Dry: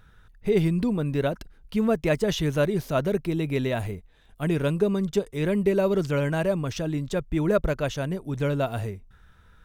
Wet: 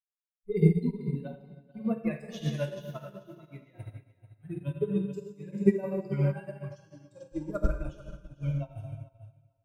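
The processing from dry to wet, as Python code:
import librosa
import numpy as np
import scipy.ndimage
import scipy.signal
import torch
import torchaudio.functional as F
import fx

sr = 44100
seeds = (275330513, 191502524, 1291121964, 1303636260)

y = fx.bin_expand(x, sr, power=3.0)
y = fx.low_shelf(y, sr, hz=160.0, db=9.0)
y = fx.echo_feedback(y, sr, ms=440, feedback_pct=31, wet_db=-9.0)
y = fx.rev_plate(y, sr, seeds[0], rt60_s=1.9, hf_ratio=0.95, predelay_ms=0, drr_db=-2.0)
y = fx.upward_expand(y, sr, threshold_db=-36.0, expansion=2.5)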